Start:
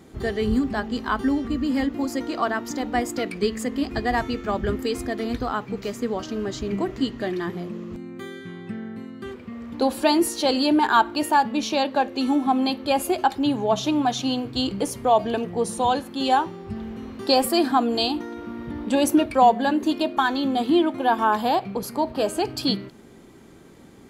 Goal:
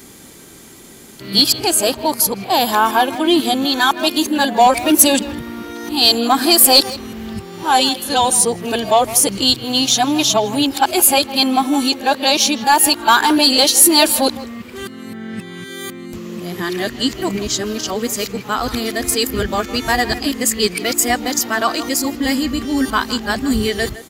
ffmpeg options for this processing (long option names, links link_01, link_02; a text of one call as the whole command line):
ffmpeg -i in.wav -filter_complex "[0:a]areverse,asplit=2[link_01][link_02];[link_02]adelay=160,highpass=300,lowpass=3400,asoftclip=type=hard:threshold=-14.5dB,volume=-15dB[link_03];[link_01][link_03]amix=inputs=2:normalize=0,crystalizer=i=6:c=0,acontrast=29,volume=-1dB" out.wav